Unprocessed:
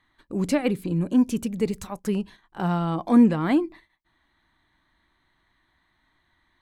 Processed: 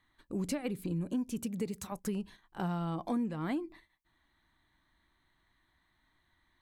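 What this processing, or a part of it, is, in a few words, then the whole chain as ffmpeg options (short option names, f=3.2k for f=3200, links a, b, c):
ASMR close-microphone chain: -filter_complex "[0:a]asettb=1/sr,asplit=3[a][b][c];[a]atrim=end=1.404[d];[b]atrim=start=1.4:end=1.92,asetpts=PTS-STARTPTS,afade=t=in:d=0.004:c=qsin,afade=t=out:st=0.516:d=0.004:c=qsin,highpass=92[e];[c]atrim=start=1.916[f];[d][e]acrossfade=d=0.004:c1=hsin:c2=qsin[g];[g][f]acrossfade=d=0.004:c1=qsin:c2=hsin,lowshelf=f=180:g=3.5,acompressor=threshold=-25dB:ratio=5,highshelf=f=6.3k:g=6.5,volume=-6.5dB"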